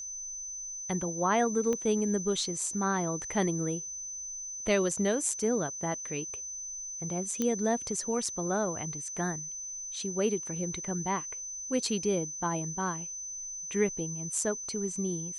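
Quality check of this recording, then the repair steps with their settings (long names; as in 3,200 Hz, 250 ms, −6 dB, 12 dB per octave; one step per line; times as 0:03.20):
whistle 6,100 Hz −37 dBFS
0:01.73: click −20 dBFS
0:07.42: click −16 dBFS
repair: click removal
notch filter 6,100 Hz, Q 30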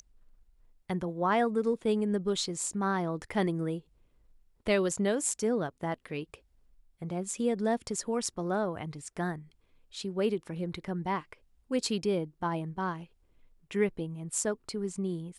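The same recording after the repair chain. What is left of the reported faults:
0:01.73: click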